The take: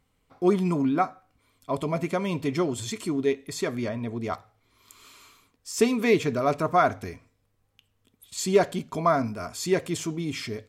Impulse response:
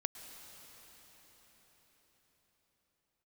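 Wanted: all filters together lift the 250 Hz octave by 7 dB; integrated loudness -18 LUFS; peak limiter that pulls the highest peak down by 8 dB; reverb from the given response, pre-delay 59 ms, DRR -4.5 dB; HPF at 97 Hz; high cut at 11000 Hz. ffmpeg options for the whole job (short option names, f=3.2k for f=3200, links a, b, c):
-filter_complex "[0:a]highpass=97,lowpass=11k,equalizer=f=250:t=o:g=9,alimiter=limit=-13dB:level=0:latency=1,asplit=2[a][b];[1:a]atrim=start_sample=2205,adelay=59[c];[b][c]afir=irnorm=-1:irlink=0,volume=4.5dB[d];[a][d]amix=inputs=2:normalize=0,volume=0.5dB"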